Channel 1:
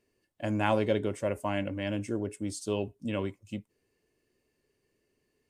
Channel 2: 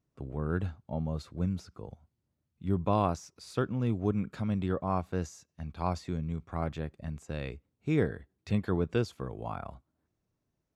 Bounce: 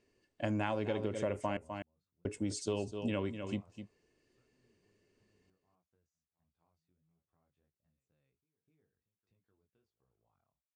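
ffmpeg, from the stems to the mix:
-filter_complex "[0:a]lowpass=f=7900:w=0.5412,lowpass=f=7900:w=1.3066,volume=1.12,asplit=3[s0][s1][s2];[s0]atrim=end=1.57,asetpts=PTS-STARTPTS,afade=t=out:st=1.566:d=0.004:c=hsin[s3];[s1]atrim=start=1.57:end=2.25,asetpts=PTS-STARTPTS,volume=0[s4];[s2]atrim=start=2.25,asetpts=PTS-STARTPTS,afade=t=in:d=0.004:c=hsin[s5];[s3][s4][s5]concat=n=3:v=0:a=1,asplit=3[s6][s7][s8];[s7]volume=0.266[s9];[1:a]flanger=delay=17:depth=5.4:speed=1.4,acompressor=threshold=0.0158:ratio=6,adelay=550,volume=0.106,asplit=2[s10][s11];[s11]volume=0.112[s12];[s8]apad=whole_len=498478[s13];[s10][s13]sidechaingate=range=0.0224:threshold=0.00126:ratio=16:detection=peak[s14];[s9][s12]amix=inputs=2:normalize=0,aecho=0:1:253:1[s15];[s6][s14][s15]amix=inputs=3:normalize=0,acompressor=threshold=0.0316:ratio=12"

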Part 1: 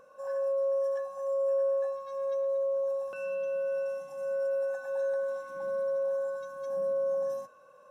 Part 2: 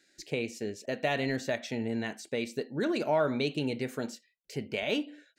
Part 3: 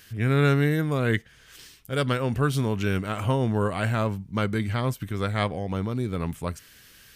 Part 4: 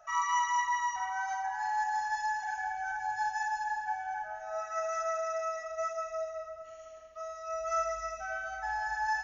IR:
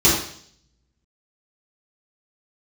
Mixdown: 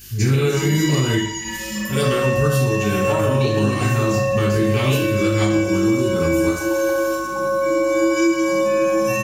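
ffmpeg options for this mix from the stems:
-filter_complex "[0:a]adelay=1750,volume=0.794,asplit=2[s0][s1];[s1]volume=0.668[s2];[1:a]volume=0.501,asplit=3[s3][s4][s5];[s3]atrim=end=0.97,asetpts=PTS-STARTPTS,afade=t=out:st=0.966:d=0.004:c=hsin[s6];[s4]atrim=start=0.97:end=3.07,asetpts=PTS-STARTPTS,volume=0[s7];[s5]atrim=start=3.07,asetpts=PTS-STARTPTS,afade=t=in:d=0.004:c=hsin[s8];[s6][s7][s8]concat=n=3:v=0:a=1,asplit=2[s9][s10];[s10]volume=0.398[s11];[2:a]volume=0.376,asplit=2[s12][s13];[s13]volume=0.376[s14];[3:a]aeval=exprs='val(0)*sin(2*PI*980*n/s)':c=same,adelay=450,volume=0.562,asplit=2[s15][s16];[s16]volume=0.473[s17];[4:a]atrim=start_sample=2205[s18];[s2][s11][s14][s17]amix=inputs=4:normalize=0[s19];[s19][s18]afir=irnorm=-1:irlink=0[s20];[s0][s9][s12][s15][s20]amix=inputs=5:normalize=0,aeval=exprs='val(0)+0.00447*(sin(2*PI*50*n/s)+sin(2*PI*2*50*n/s)/2+sin(2*PI*3*50*n/s)/3+sin(2*PI*4*50*n/s)/4+sin(2*PI*5*50*n/s)/5)':c=same,aemphasis=mode=production:type=75kf,alimiter=limit=0.376:level=0:latency=1:release=377"

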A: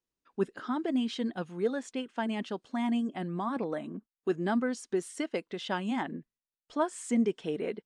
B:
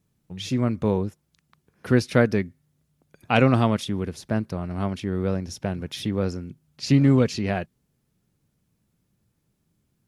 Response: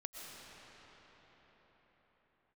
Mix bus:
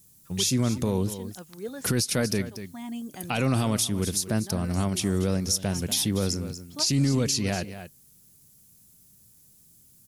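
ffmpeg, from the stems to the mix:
-filter_complex "[0:a]volume=1[s0];[1:a]highshelf=f=5300:g=12,alimiter=limit=0.211:level=0:latency=1:release=12,volume=1.33,asplit=3[s1][s2][s3];[s2]volume=0.178[s4];[s3]apad=whole_len=346401[s5];[s0][s5]sidechaincompress=threshold=0.0251:ratio=4:attack=41:release=1300[s6];[s4]aecho=0:1:238:1[s7];[s6][s1][s7]amix=inputs=3:normalize=0,bass=f=250:g=3,treble=f=4000:g=13,alimiter=limit=0.188:level=0:latency=1:release=358"

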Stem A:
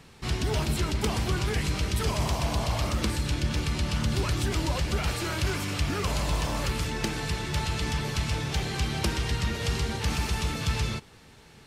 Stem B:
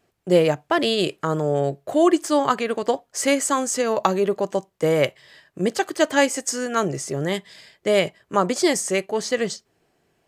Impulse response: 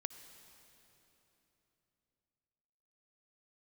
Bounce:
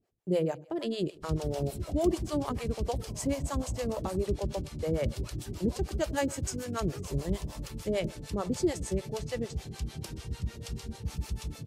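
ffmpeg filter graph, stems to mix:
-filter_complex "[0:a]adelay=1000,volume=0.668[s0];[1:a]highshelf=f=5000:g=-8.5,volume=0.794,asplit=2[s1][s2];[s2]volume=0.119,aecho=0:1:97|194|291|388|485:1|0.33|0.109|0.0359|0.0119[s3];[s0][s1][s3]amix=inputs=3:normalize=0,equalizer=f=1700:w=0.39:g=-11.5,acrossover=split=480[s4][s5];[s4]aeval=exprs='val(0)*(1-1/2+1/2*cos(2*PI*6.7*n/s))':c=same[s6];[s5]aeval=exprs='val(0)*(1-1/2-1/2*cos(2*PI*6.7*n/s))':c=same[s7];[s6][s7]amix=inputs=2:normalize=0"

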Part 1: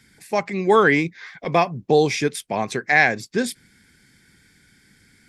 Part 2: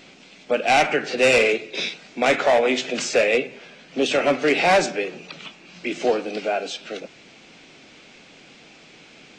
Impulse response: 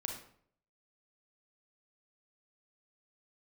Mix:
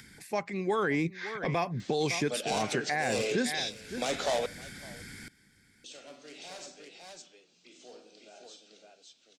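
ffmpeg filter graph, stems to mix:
-filter_complex "[0:a]acompressor=mode=upward:threshold=0.02:ratio=2.5,volume=0.944,afade=t=in:st=0.71:d=0.5:silence=0.375837,asplit=3[s0][s1][s2];[s1]volume=0.126[s3];[1:a]aexciter=amount=5.4:drive=4.6:freq=3300,adelay=1800,volume=0.251,asplit=3[s4][s5][s6];[s4]atrim=end=4.46,asetpts=PTS-STARTPTS,afade=t=out:st=4.456:d=0.004:c=hsin[s7];[s5]atrim=start=4.46:end=5.84,asetpts=PTS-STARTPTS,volume=0[s8];[s6]atrim=start=5.84,asetpts=PTS-STARTPTS,afade=t=in:d=0.004:c=hsin[s9];[s7][s8][s9]concat=n=3:v=0:a=1,asplit=3[s10][s11][s12];[s11]volume=0.0944[s13];[s12]volume=0.075[s14];[s2]apad=whole_len=493150[s15];[s10][s15]sidechaingate=range=0.0224:threshold=0.00355:ratio=16:detection=peak[s16];[2:a]atrim=start_sample=2205[s17];[s13][s17]afir=irnorm=-1:irlink=0[s18];[s3][s14]amix=inputs=2:normalize=0,aecho=0:1:559:1[s19];[s0][s16][s18][s19]amix=inputs=4:normalize=0,acrossover=split=1300|7400[s20][s21][s22];[s20]acompressor=threshold=0.0631:ratio=4[s23];[s21]acompressor=threshold=0.0224:ratio=4[s24];[s22]acompressor=threshold=0.00631:ratio=4[s25];[s23][s24][s25]amix=inputs=3:normalize=0,alimiter=limit=0.1:level=0:latency=1:release=16"

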